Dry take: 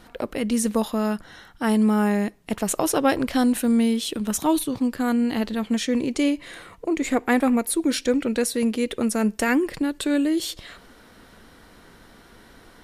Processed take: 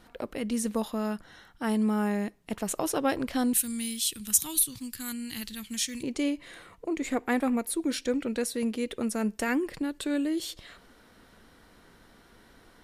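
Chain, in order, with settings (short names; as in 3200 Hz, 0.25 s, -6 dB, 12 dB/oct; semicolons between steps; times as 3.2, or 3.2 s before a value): 3.53–6.03 EQ curve 120 Hz 0 dB, 600 Hz -20 dB, 2100 Hz 0 dB, 11000 Hz +15 dB; gain -7 dB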